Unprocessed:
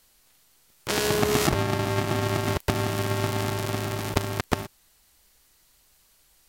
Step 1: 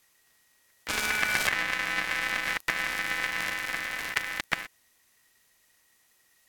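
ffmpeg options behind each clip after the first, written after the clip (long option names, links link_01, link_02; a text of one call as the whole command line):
ffmpeg -i in.wav -af "aeval=exprs='val(0)*sin(2*PI*1900*n/s)':channel_layout=same,volume=-1.5dB" out.wav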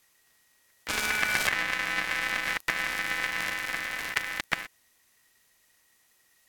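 ffmpeg -i in.wav -af anull out.wav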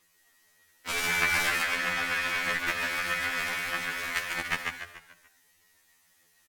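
ffmpeg -i in.wav -filter_complex "[0:a]aphaser=in_gain=1:out_gain=1:delay=4.4:decay=0.47:speed=1.6:type=sinusoidal,asplit=2[link_01][link_02];[link_02]asplit=5[link_03][link_04][link_05][link_06][link_07];[link_03]adelay=145,afreqshift=-48,volume=-4dB[link_08];[link_04]adelay=290,afreqshift=-96,volume=-11.3dB[link_09];[link_05]adelay=435,afreqshift=-144,volume=-18.7dB[link_10];[link_06]adelay=580,afreqshift=-192,volume=-26dB[link_11];[link_07]adelay=725,afreqshift=-240,volume=-33.3dB[link_12];[link_08][link_09][link_10][link_11][link_12]amix=inputs=5:normalize=0[link_13];[link_01][link_13]amix=inputs=2:normalize=0,afftfilt=real='re*2*eq(mod(b,4),0)':imag='im*2*eq(mod(b,4),0)':win_size=2048:overlap=0.75" out.wav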